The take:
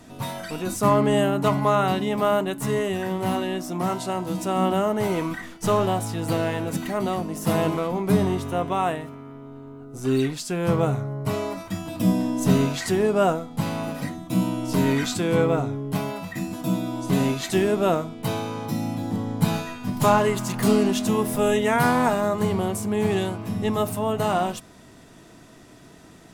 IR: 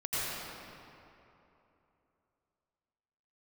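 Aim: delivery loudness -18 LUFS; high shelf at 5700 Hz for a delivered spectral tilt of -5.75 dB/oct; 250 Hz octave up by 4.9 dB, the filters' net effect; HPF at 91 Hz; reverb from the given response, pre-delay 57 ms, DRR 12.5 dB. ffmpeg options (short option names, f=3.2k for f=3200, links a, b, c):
-filter_complex "[0:a]highpass=91,equalizer=f=250:t=o:g=6.5,highshelf=f=5.7k:g=8,asplit=2[a][b];[1:a]atrim=start_sample=2205,adelay=57[c];[b][c]afir=irnorm=-1:irlink=0,volume=-20.5dB[d];[a][d]amix=inputs=2:normalize=0,volume=2.5dB"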